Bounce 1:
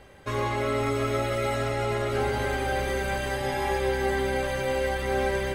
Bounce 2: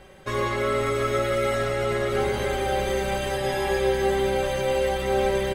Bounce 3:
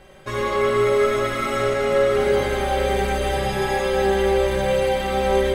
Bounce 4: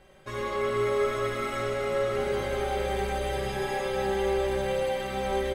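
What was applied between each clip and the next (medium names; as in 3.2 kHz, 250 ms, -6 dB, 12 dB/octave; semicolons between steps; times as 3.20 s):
comb 5.4 ms, depth 53%; trim +1.5 dB
reverberation RT60 3.4 s, pre-delay 5 ms, DRR -1 dB
delay 447 ms -9 dB; trim -8.5 dB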